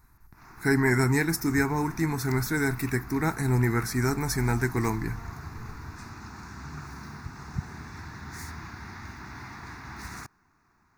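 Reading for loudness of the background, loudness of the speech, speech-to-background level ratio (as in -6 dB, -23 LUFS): -42.0 LUFS, -26.5 LUFS, 15.5 dB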